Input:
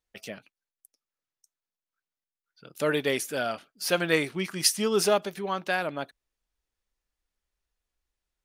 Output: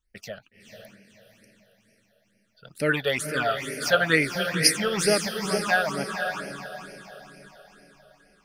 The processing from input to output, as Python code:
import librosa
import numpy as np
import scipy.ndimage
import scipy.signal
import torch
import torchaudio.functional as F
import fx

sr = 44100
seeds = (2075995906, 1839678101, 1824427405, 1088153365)

y = fx.low_shelf(x, sr, hz=69.0, db=11.5)
y = fx.echo_diffused(y, sr, ms=498, feedback_pct=46, wet_db=-6)
y = fx.dynamic_eq(y, sr, hz=1400.0, q=0.85, threshold_db=-41.0, ratio=4.0, max_db=5)
y = fx.phaser_stages(y, sr, stages=8, low_hz=280.0, high_hz=1100.0, hz=2.2, feedback_pct=20)
y = y * librosa.db_to_amplitude(3.5)